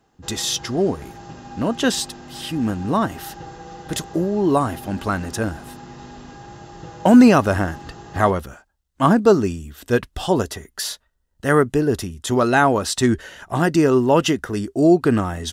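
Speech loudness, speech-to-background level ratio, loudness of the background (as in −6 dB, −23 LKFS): −19.5 LKFS, 19.5 dB, −39.0 LKFS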